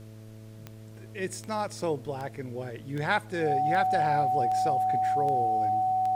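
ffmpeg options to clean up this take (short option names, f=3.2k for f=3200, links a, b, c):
-af "adeclick=t=4,bandreject=f=109.3:t=h:w=4,bandreject=f=218.6:t=h:w=4,bandreject=f=327.9:t=h:w=4,bandreject=f=437.2:t=h:w=4,bandreject=f=546.5:t=h:w=4,bandreject=f=655.8:t=h:w=4,bandreject=f=750:w=30,agate=range=-21dB:threshold=-38dB"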